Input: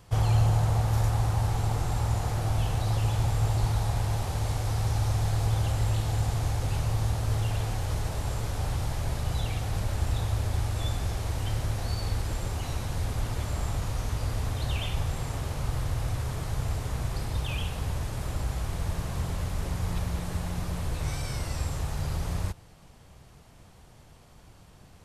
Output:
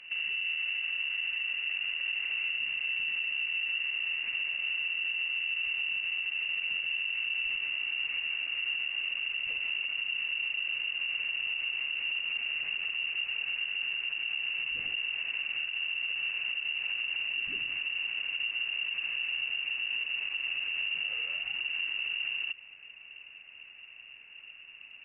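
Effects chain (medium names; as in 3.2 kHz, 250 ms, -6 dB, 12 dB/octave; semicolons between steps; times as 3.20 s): compression 4:1, threshold -31 dBFS, peak gain reduction 11 dB; bass shelf 490 Hz +6.5 dB; peak limiter -23.5 dBFS, peak gain reduction 7 dB; peaking EQ 230 Hz +3.5 dB 0.93 oct; frequency inversion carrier 2.8 kHz; on a send: reverse echo 143 ms -15 dB; on the sum: trim -5 dB; Opus 64 kbps 48 kHz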